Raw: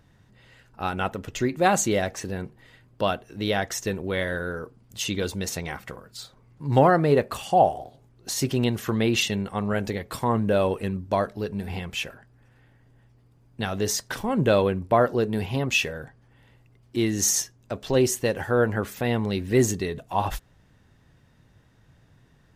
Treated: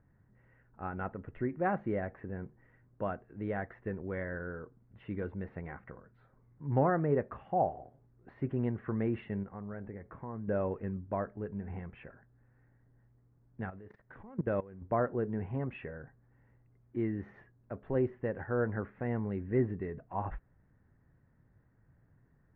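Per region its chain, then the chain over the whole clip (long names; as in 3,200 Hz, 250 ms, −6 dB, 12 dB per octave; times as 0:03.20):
0:09.43–0:10.48: downward compressor 2 to 1, threshold −34 dBFS + low-pass filter 2,200 Hz
0:13.70–0:14.82: mu-law and A-law mismatch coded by mu + high-shelf EQ 5,100 Hz +8.5 dB + output level in coarse steps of 20 dB
whole clip: Butterworth low-pass 1,900 Hz 36 dB per octave; parametric band 910 Hz −4 dB 2.2 octaves; level −8 dB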